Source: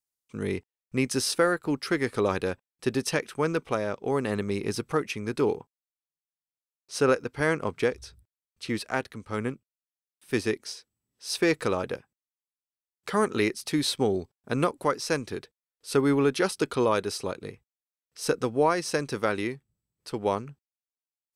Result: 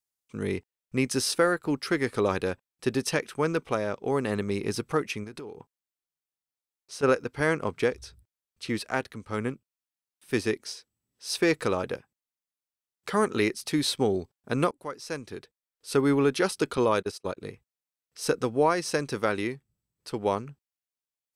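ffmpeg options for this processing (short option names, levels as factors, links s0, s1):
-filter_complex "[0:a]asplit=3[s0][s1][s2];[s0]afade=t=out:st=5.23:d=0.02[s3];[s1]acompressor=threshold=0.0158:ratio=16:attack=3.2:release=140:knee=1:detection=peak,afade=t=in:st=5.23:d=0.02,afade=t=out:st=7.02:d=0.02[s4];[s2]afade=t=in:st=7.02:d=0.02[s5];[s3][s4][s5]amix=inputs=3:normalize=0,asettb=1/sr,asplit=3[s6][s7][s8];[s6]atrim=end=16.774[s9];[s7]atrim=start=16.77:end=17.37,asetpts=PTS-STARTPTS,afade=t=in:d=0.004:c=qsin,afade=t=out:st=0.596:d=0.004:c=qsin,agate=range=0.0224:threshold=0.0224:ratio=16:release=100:detection=peak[s10];[s8]atrim=start=17.366[s11];[s9][s10]acrossfade=d=0.004:c1=hsin:c2=qsin[s12];[s12][s11]acrossfade=d=0.004:c1=qsin:c2=hsin,asplit=2[s13][s14];[s13]atrim=end=14.71,asetpts=PTS-STARTPTS,afade=t=out:st=14.706:d=0.004:c=hsin:silence=0.188365[s15];[s14]atrim=start=14.71,asetpts=PTS-STARTPTS,afade=t=in:d=1.35:silence=0.188365[s16];[s15][s16]concat=n=2:v=0:a=1"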